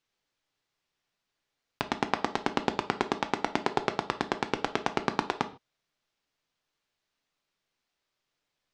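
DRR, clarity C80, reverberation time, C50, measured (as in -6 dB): 8.0 dB, 20.0 dB, no single decay rate, 15.0 dB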